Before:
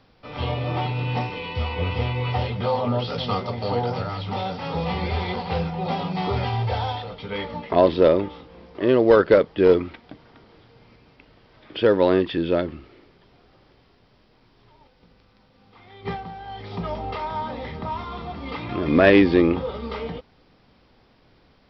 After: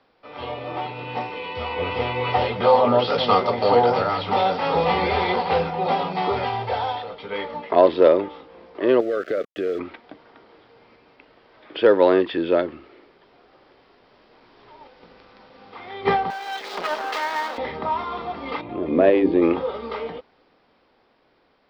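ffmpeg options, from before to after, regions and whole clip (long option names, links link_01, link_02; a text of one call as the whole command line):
ffmpeg -i in.wav -filter_complex "[0:a]asettb=1/sr,asplit=3[link_01][link_02][link_03];[link_01]atrim=end=9.004[link_04];[link_02]atrim=start=9:end=9.79,asetpts=PTS-STARTPTS,afade=type=in:duration=0.004:curve=qsin,afade=type=out:start_time=0.786:duration=0.004:curve=qsin,acompressor=threshold=-22dB:ratio=6:attack=3.2:release=140:knee=1:detection=peak,aeval=exprs='val(0)*gte(abs(val(0)),0.0112)':channel_layout=same,asuperstop=centerf=920:order=8:qfactor=2.2[link_05];[link_03]atrim=start=9.786[link_06];[link_04][link_05]acrossfade=duration=0.004:curve1=hsin:curve2=qsin[link_07];[link_07][link_06]acrossfade=duration=0.004:curve1=qsin:curve2=hsin,asettb=1/sr,asplit=3[link_08][link_09][link_10];[link_08]atrim=end=16.304[link_11];[link_09]atrim=start=16.3:end=17.58,asetpts=PTS-STARTPTS,afade=type=in:duration=0.004:curve=qsin,afade=type=out:start_time=1.276:duration=0.004:curve=qsin,highpass=frequency=180:width=0.5412,highpass=frequency=180:width=1.3066,aeval=exprs='max(val(0),0)':channel_layout=same,aemphasis=mode=production:type=riaa[link_12];[link_10]atrim=start=17.576[link_13];[link_11][link_12]acrossfade=duration=0.004:curve1=hsin:curve2=qsin[link_14];[link_14][link_13]acrossfade=duration=0.004:curve1=qsin:curve2=hsin,asettb=1/sr,asplit=3[link_15][link_16][link_17];[link_15]atrim=end=18.614[link_18];[link_16]atrim=start=18.61:end=19.42,asetpts=PTS-STARTPTS,afade=type=in:duration=0.004:curve=qsin,afade=type=out:start_time=0.806:duration=0.004:curve=qsin,lowpass=2300,equalizer=frequency=1500:width_type=o:width=1.6:gain=-14.5,bandreject=frequency=50:width_type=h:width=6,bandreject=frequency=100:width_type=h:width=6,bandreject=frequency=150:width_type=h:width=6,bandreject=frequency=200:width_type=h:width=6,bandreject=frequency=250:width_type=h:width=6,bandreject=frequency=300:width_type=h:width=6,bandreject=frequency=350:width_type=h:width=6,bandreject=frequency=400:width_type=h:width=6,bandreject=frequency=450:width_type=h:width=6[link_19];[link_17]atrim=start=19.416[link_20];[link_18][link_19]acrossfade=duration=0.004:curve1=hsin:curve2=qsin[link_21];[link_21][link_20]acrossfade=duration=0.004:curve1=qsin:curve2=hsin,equalizer=frequency=3100:width=1.1:gain=-3,dynaudnorm=framelen=190:gausssize=21:maxgain=16dB,acrossover=split=280 4900:gain=0.158 1 0.141[link_22][link_23][link_24];[link_22][link_23][link_24]amix=inputs=3:normalize=0,volume=-1dB" out.wav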